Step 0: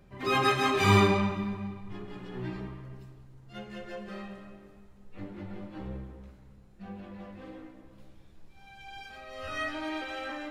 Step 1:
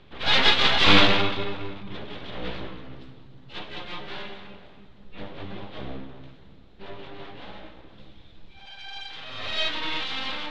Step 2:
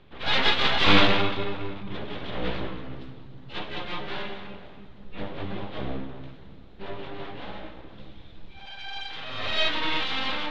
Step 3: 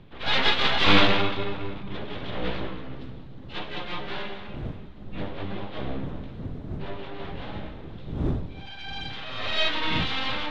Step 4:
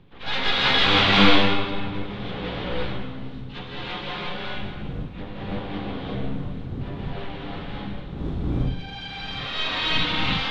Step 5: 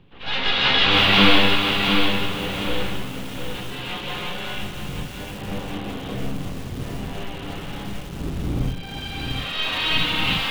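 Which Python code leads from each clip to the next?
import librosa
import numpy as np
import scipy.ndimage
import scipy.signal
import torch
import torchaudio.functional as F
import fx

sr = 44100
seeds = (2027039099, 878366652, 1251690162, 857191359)

y1 = np.abs(x)
y1 = fx.lowpass_res(y1, sr, hz=3600.0, q=3.7)
y1 = y1 * librosa.db_to_amplitude(6.0)
y2 = fx.rider(y1, sr, range_db=4, speed_s=2.0)
y2 = fx.high_shelf(y2, sr, hz=4600.0, db=-8.0)
y3 = fx.dmg_wind(y2, sr, seeds[0], corner_hz=200.0, level_db=-38.0)
y4 = fx.notch(y3, sr, hz=620.0, q=12.0)
y4 = fx.rev_gated(y4, sr, seeds[1], gate_ms=380, shape='rising', drr_db=-5.5)
y4 = y4 * librosa.db_to_amplitude(-3.5)
y5 = fx.peak_eq(y4, sr, hz=2800.0, db=7.0, octaves=0.24)
y5 = fx.echo_crushed(y5, sr, ms=703, feedback_pct=35, bits=6, wet_db=-5.0)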